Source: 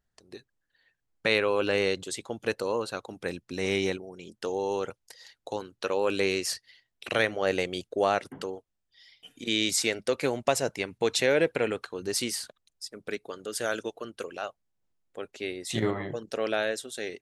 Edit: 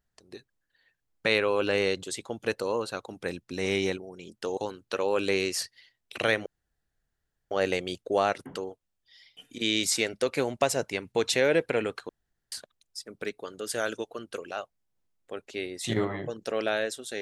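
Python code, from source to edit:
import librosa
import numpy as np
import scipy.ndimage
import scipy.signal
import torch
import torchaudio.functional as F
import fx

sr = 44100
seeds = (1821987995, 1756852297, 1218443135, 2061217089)

y = fx.edit(x, sr, fx.cut(start_s=4.57, length_s=0.91),
    fx.insert_room_tone(at_s=7.37, length_s=1.05),
    fx.room_tone_fill(start_s=11.95, length_s=0.43), tone=tone)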